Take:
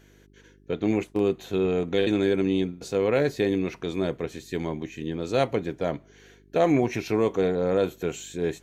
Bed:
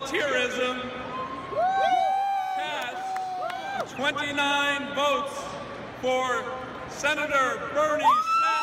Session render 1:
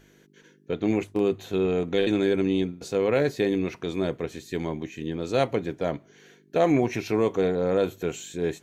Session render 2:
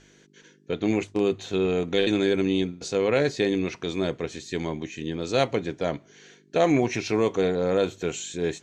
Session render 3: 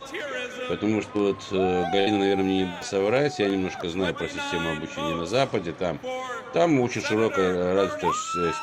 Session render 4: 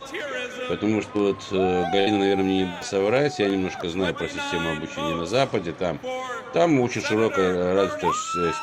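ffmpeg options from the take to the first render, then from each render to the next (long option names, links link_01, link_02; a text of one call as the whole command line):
ffmpeg -i in.wav -af "bandreject=frequency=50:width_type=h:width=4,bandreject=frequency=100:width_type=h:width=4" out.wav
ffmpeg -i in.wav -af "lowpass=frequency=7400:width=0.5412,lowpass=frequency=7400:width=1.3066,highshelf=frequency=3000:gain=8.5" out.wav
ffmpeg -i in.wav -i bed.wav -filter_complex "[1:a]volume=-6.5dB[link_01];[0:a][link_01]amix=inputs=2:normalize=0" out.wav
ffmpeg -i in.wav -af "volume=1.5dB" out.wav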